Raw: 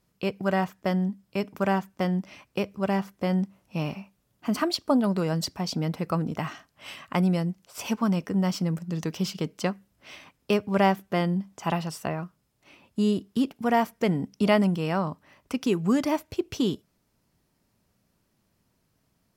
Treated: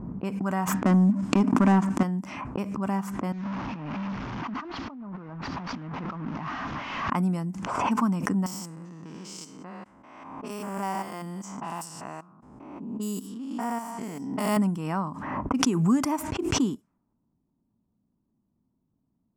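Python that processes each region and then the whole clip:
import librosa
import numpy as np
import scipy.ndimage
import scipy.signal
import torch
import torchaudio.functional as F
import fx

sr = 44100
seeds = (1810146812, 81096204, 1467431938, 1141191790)

y = fx.chain(x, sr, fx.lowpass(hz=4700.0, slope=12),
    fx.peak_eq(hz=270.0, db=9.5, octaves=0.86),
    fx.leveller(passes=2), at=(0.74, 2.03))
y = fx.chain(y, sr, fx.delta_mod(bps=32000, step_db=-27.0),
    fx.lowpass(hz=4300.0, slope=12),
    fx.over_compress(threshold_db=-33.0, ratio=-1.0), at=(3.32, 7.1))
y = fx.chain(y, sr, fx.spec_steps(hold_ms=200),
    fx.bass_treble(bass_db=-10, treble_db=12),
    fx.resample_bad(factor=2, down='filtered', up='zero_stuff'), at=(8.46, 14.57))
y = fx.env_lowpass(y, sr, base_hz=480.0, full_db=-24.5)
y = fx.graphic_eq(y, sr, hz=(250, 500, 1000, 4000, 8000), db=(10, -7, 10, -9, 11))
y = fx.pre_swell(y, sr, db_per_s=38.0)
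y = y * 10.0 ** (-7.5 / 20.0)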